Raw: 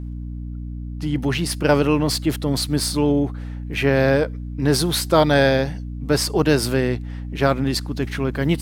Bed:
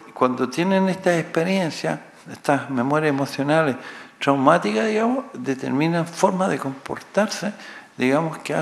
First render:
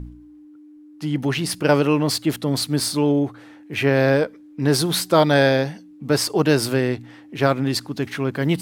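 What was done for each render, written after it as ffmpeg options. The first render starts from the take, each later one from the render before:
ffmpeg -i in.wav -af "bandreject=frequency=60:width_type=h:width=4,bandreject=frequency=120:width_type=h:width=4,bandreject=frequency=180:width_type=h:width=4,bandreject=frequency=240:width_type=h:width=4" out.wav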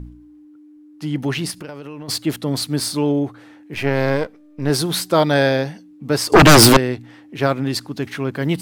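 ffmpeg -i in.wav -filter_complex "[0:a]asplit=3[link_01][link_02][link_03];[link_01]afade=type=out:start_time=1.5:duration=0.02[link_04];[link_02]acompressor=threshold=-29dB:ratio=10:attack=3.2:release=140:knee=1:detection=peak,afade=type=in:start_time=1.5:duration=0.02,afade=type=out:start_time=2.08:duration=0.02[link_05];[link_03]afade=type=in:start_time=2.08:duration=0.02[link_06];[link_04][link_05][link_06]amix=inputs=3:normalize=0,asettb=1/sr,asplit=3[link_07][link_08][link_09];[link_07]atrim=end=3.744[link_10];[link_08]atrim=start=3.74:end=4.7,asetpts=PTS-STARTPTS,afade=type=in:duration=0.004:curve=qsin,afade=type=out:start_time=0.956:duration=0.004:curve=qsin,aeval=exprs='if(lt(val(0),0),0.447*val(0),val(0))':channel_layout=same[link_11];[link_09]atrim=start=4.696[link_12];[link_10][link_11]acrossfade=duration=0.004:curve1=hsin:curve2=qsin[link_13];[link_13][link_12]acrossfade=duration=0.004:curve1=qsin:curve2=hsin,asettb=1/sr,asplit=3[link_14][link_15][link_16];[link_14]atrim=end=6.324[link_17];[link_15]atrim=start=6.32:end=6.77,asetpts=PTS-STARTPTS,afade=type=in:duration=0.004:curve=qsin,afade=type=out:start_time=0.446:duration=0.004:curve=qsin,aeval=exprs='0.631*sin(PI/2*5.62*val(0)/0.631)':channel_layout=same[link_18];[link_16]atrim=start=6.766[link_19];[link_17][link_18]acrossfade=duration=0.004:curve1=hsin:curve2=qsin[link_20];[link_20][link_19]acrossfade=duration=0.004:curve1=qsin:curve2=hsin" out.wav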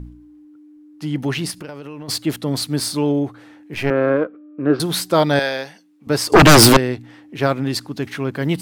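ffmpeg -i in.wav -filter_complex "[0:a]asettb=1/sr,asplit=3[link_01][link_02][link_03];[link_01]atrim=end=3.904[link_04];[link_02]atrim=start=3.9:end=4.8,asetpts=PTS-STARTPTS,afade=type=in:duration=0.004:curve=qsin,afade=type=out:start_time=0.896:duration=0.004:curve=qsin,highpass=180,equalizer=frequency=320:width_type=q:width=4:gain=8,equalizer=frequency=530:width_type=q:width=4:gain=4,equalizer=frequency=870:width_type=q:width=4:gain=-9,equalizer=frequency=1300:width_type=q:width=4:gain=9,equalizer=frequency=2000:width_type=q:width=4:gain=-9,lowpass=frequency=2400:width=0.5412,lowpass=frequency=2400:width=1.3066[link_05];[link_03]atrim=start=4.796[link_06];[link_04][link_05]acrossfade=duration=0.004:curve1=hsin:curve2=qsin[link_07];[link_07][link_06]acrossfade=duration=0.004:curve1=qsin:curve2=hsin,asettb=1/sr,asplit=3[link_08][link_09][link_10];[link_08]atrim=end=5.394[link_11];[link_09]atrim=start=5.39:end=6.07,asetpts=PTS-STARTPTS,afade=type=in:duration=0.004:curve=qsin,afade=type=out:start_time=0.676:duration=0.004:curve=qsin,highpass=frequency=1000:poles=1[link_12];[link_10]atrim=start=6.066[link_13];[link_11][link_12]acrossfade=duration=0.004:curve1=hsin:curve2=qsin[link_14];[link_14][link_13]acrossfade=duration=0.004:curve1=qsin:curve2=hsin" out.wav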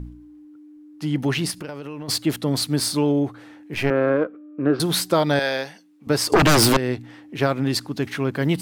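ffmpeg -i in.wav -af "acompressor=threshold=-14dB:ratio=5" out.wav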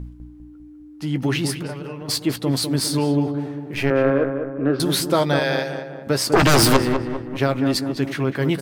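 ffmpeg -i in.wav -filter_complex "[0:a]asplit=2[link_01][link_02];[link_02]adelay=15,volume=-12dB[link_03];[link_01][link_03]amix=inputs=2:normalize=0,asplit=2[link_04][link_05];[link_05]adelay=200,lowpass=frequency=1600:poles=1,volume=-6.5dB,asplit=2[link_06][link_07];[link_07]adelay=200,lowpass=frequency=1600:poles=1,volume=0.53,asplit=2[link_08][link_09];[link_09]adelay=200,lowpass=frequency=1600:poles=1,volume=0.53,asplit=2[link_10][link_11];[link_11]adelay=200,lowpass=frequency=1600:poles=1,volume=0.53,asplit=2[link_12][link_13];[link_13]adelay=200,lowpass=frequency=1600:poles=1,volume=0.53,asplit=2[link_14][link_15];[link_15]adelay=200,lowpass=frequency=1600:poles=1,volume=0.53,asplit=2[link_16][link_17];[link_17]adelay=200,lowpass=frequency=1600:poles=1,volume=0.53[link_18];[link_04][link_06][link_08][link_10][link_12][link_14][link_16][link_18]amix=inputs=8:normalize=0" out.wav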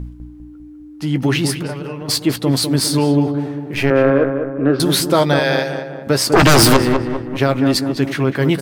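ffmpeg -i in.wav -af "volume=5dB,alimiter=limit=-2dB:level=0:latency=1" out.wav

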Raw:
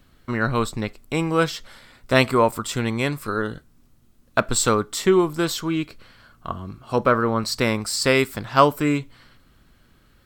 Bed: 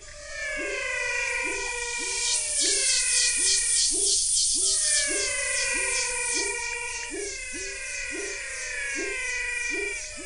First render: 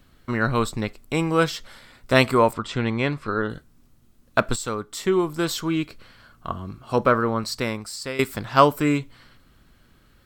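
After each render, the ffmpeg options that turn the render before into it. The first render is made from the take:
ffmpeg -i in.wav -filter_complex "[0:a]asettb=1/sr,asplit=3[link_01][link_02][link_03];[link_01]atrim=end=2.534[link_04];[link_02]atrim=start=2.53:end=3.5,asetpts=PTS-STARTPTS,afade=type=in:duration=0.004:curve=qsin,afade=type=out:start_time=0.966:duration=0.004:curve=qsin,lowpass=3800[link_05];[link_03]atrim=start=3.496[link_06];[link_04][link_05]acrossfade=duration=0.004:curve1=hsin:curve2=qsin[link_07];[link_07][link_06]acrossfade=duration=0.004:curve1=qsin:curve2=hsin,asplit=3[link_08][link_09][link_10];[link_08]atrim=end=4.56,asetpts=PTS-STARTPTS,afade=type=out:start_time=4.556:duration=0.004:curve=hsin:silence=0.251189[link_11];[link_09]atrim=start=4.56:end=8.19,asetpts=PTS-STARTPTS,afade=type=in:duration=1.12:silence=0.251189,afade=type=out:start_time=2.48:duration=1.15:silence=0.16788[link_12];[link_10]atrim=start=8.19,asetpts=PTS-STARTPTS,afade=type=in:duration=0.004:curve=hsin:silence=0.16788[link_13];[link_11][link_12][link_13]concat=n=3:v=0:a=1" out.wav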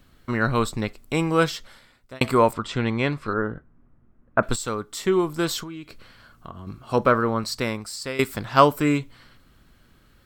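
ffmpeg -i in.wav -filter_complex "[0:a]asettb=1/sr,asplit=3[link_01][link_02][link_03];[link_01]atrim=end=3.334[link_04];[link_02]atrim=start=3.33:end=4.43,asetpts=PTS-STARTPTS,afade=type=in:duration=0.004:curve=qsin,afade=type=out:start_time=1.096:duration=0.004:curve=qsin,lowpass=frequency=1800:width=0.5412,lowpass=frequency=1800:width=1.3066[link_05];[link_03]atrim=start=4.426[link_06];[link_04][link_05]acrossfade=duration=0.004:curve1=hsin:curve2=qsin[link_07];[link_07][link_06]acrossfade=duration=0.004:curve1=qsin:curve2=hsin,asettb=1/sr,asplit=3[link_08][link_09][link_10];[link_08]atrim=end=5.634[link_11];[link_09]atrim=start=5.63:end=6.67,asetpts=PTS-STARTPTS,afade=type=in:duration=0.004:curve=qsin,afade=type=out:start_time=1.036:duration=0.004:curve=qsin,acompressor=threshold=-35dB:ratio=4:attack=3.2:release=140:knee=1:detection=peak[link_12];[link_10]atrim=start=6.666[link_13];[link_11][link_12]acrossfade=duration=0.004:curve1=hsin:curve2=qsin[link_14];[link_14][link_13]acrossfade=duration=0.004:curve1=qsin:curve2=hsin,asplit=2[link_15][link_16];[link_15]atrim=end=2.21,asetpts=PTS-STARTPTS,afade=type=out:start_time=1.48:duration=0.73[link_17];[link_16]atrim=start=2.21,asetpts=PTS-STARTPTS,afade=type=in:duration=0.004:curve=hsin[link_18];[link_17][link_18]concat=n=2:v=0:a=1" out.wav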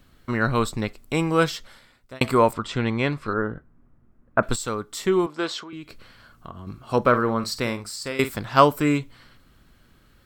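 ffmpeg -i in.wav -filter_complex "[0:a]asettb=1/sr,asplit=3[link_01][link_02][link_03];[link_01]atrim=end=5.264[link_04];[link_02]atrim=start=5.26:end=5.73,asetpts=PTS-STARTPTS,afade=type=in:duration=0.004:curve=qsin,afade=type=out:start_time=0.466:duration=0.004:curve=qsin,highpass=340,lowpass=4500[link_05];[link_03]atrim=start=5.726[link_06];[link_04][link_05]acrossfade=duration=0.004:curve1=hsin:curve2=qsin[link_07];[link_07][link_06]acrossfade=duration=0.004:curve1=qsin:curve2=hsin,asettb=1/sr,asplit=3[link_08][link_09][link_10];[link_08]atrim=end=7.084[link_11];[link_09]atrim=start=7.08:end=8.32,asetpts=PTS-STARTPTS,afade=type=in:duration=0.004:curve=qsin,afade=type=out:start_time=1.236:duration=0.004:curve=qsin,asplit=2[link_12][link_13];[link_13]adelay=49,volume=-12dB[link_14];[link_12][link_14]amix=inputs=2:normalize=0,atrim=end_sample=54684[link_15];[link_10]atrim=start=8.316[link_16];[link_11][link_15]acrossfade=duration=0.004:curve1=hsin:curve2=qsin[link_17];[link_17][link_16]acrossfade=duration=0.004:curve1=qsin:curve2=hsin" out.wav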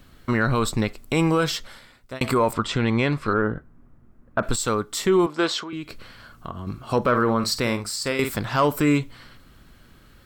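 ffmpeg -i in.wav -af "acontrast=28,alimiter=limit=-10.5dB:level=0:latency=1:release=71" out.wav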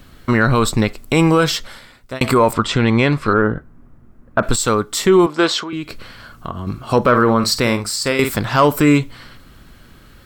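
ffmpeg -i in.wav -af "volume=7dB" out.wav

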